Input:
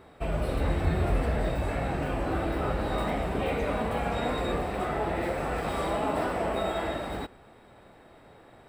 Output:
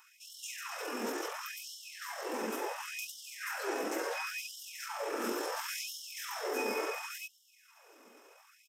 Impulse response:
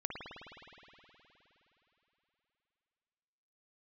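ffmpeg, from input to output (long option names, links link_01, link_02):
-af "asetrate=29433,aresample=44100,atempo=1.49831,crystalizer=i=7.5:c=0,afftfilt=real='re*gte(b*sr/1024,210*pow(2900/210,0.5+0.5*sin(2*PI*0.71*pts/sr)))':imag='im*gte(b*sr/1024,210*pow(2900/210,0.5+0.5*sin(2*PI*0.71*pts/sr)))':win_size=1024:overlap=0.75,volume=-5.5dB"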